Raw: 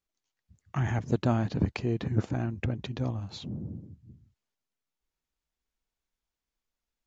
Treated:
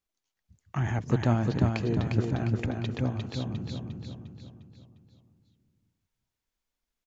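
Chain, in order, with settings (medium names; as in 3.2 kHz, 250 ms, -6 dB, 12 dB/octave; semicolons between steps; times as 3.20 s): feedback delay 353 ms, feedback 48%, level -4 dB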